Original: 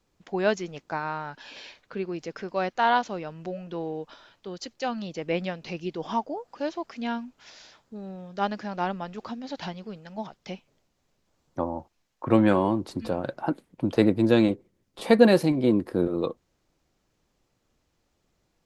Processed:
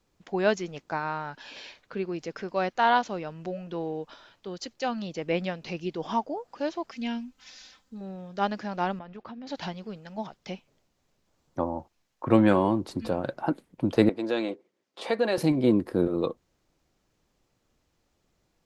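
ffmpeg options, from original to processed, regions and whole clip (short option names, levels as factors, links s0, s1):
-filter_complex "[0:a]asettb=1/sr,asplit=3[s0][s1][s2];[s0]atrim=end=6.914[s3];[s1]atrim=start=6.91:end=8.01,asetpts=PTS-STARTPTS,afade=t=in:d=0.004:c=qsin,afade=t=out:st=1.096:d=0.004:c=qsin,equalizer=f=580:t=o:w=2.8:g=-9,aecho=1:1:3.9:0.82,atrim=end_sample=48510[s4];[s2]atrim=start=8.006[s5];[s3][s4]acrossfade=d=0.004:c1=hsin:c2=qsin[s6];[s6][s5]acrossfade=d=0.004:c1=qsin:c2=hsin,asettb=1/sr,asplit=3[s7][s8][s9];[s7]atrim=end=8.994[s10];[s8]atrim=start=8.99:end=9.47,asetpts=PTS-STARTPTS,afade=t=in:d=0.004:c=qsin,afade=t=out:st=0.476:d=0.004:c=qsin,lowpass=3000,agate=range=0.0224:threshold=0.0112:ratio=3:release=100:detection=peak,acompressor=threshold=0.0141:ratio=12:attack=3.2:release=140:knee=1:detection=peak[s11];[s9]atrim=start=9.466[s12];[s10][s11]acrossfade=d=0.004:c1=hsin:c2=qsin[s13];[s13][s12]acrossfade=d=0.004:c1=qsin:c2=hsin,asettb=1/sr,asplit=3[s14][s15][s16];[s14]atrim=end=14.094[s17];[s15]atrim=start=14.09:end=15.38,asetpts=PTS-STARTPTS,afade=t=in:d=0.004:c=qsin,afade=t=out:st=1.286:d=0.004:c=qsin,acompressor=threshold=0.0891:ratio=2:attack=3.2:release=140:knee=1:detection=peak,highpass=400,lowpass=6400[s18];[s16]atrim=start=15.376[s19];[s17][s18]acrossfade=d=0.004:c1=hsin:c2=qsin[s20];[s20][s19]acrossfade=d=0.004:c1=qsin:c2=hsin"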